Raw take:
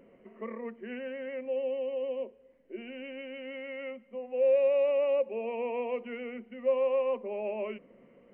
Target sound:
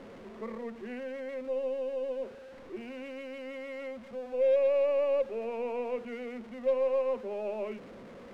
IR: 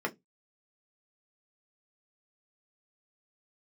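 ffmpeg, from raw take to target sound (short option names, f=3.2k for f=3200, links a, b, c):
-af "aeval=exprs='val(0)+0.5*0.00944*sgn(val(0))':c=same,aemphasis=mode=reproduction:type=75fm,aeval=exprs='0.141*(cos(1*acos(clip(val(0)/0.141,-1,1)))-cos(1*PI/2))+0.00355*(cos(6*acos(clip(val(0)/0.141,-1,1)))-cos(6*PI/2))+0.00355*(cos(7*acos(clip(val(0)/0.141,-1,1)))-cos(7*PI/2))':c=same,volume=-2dB"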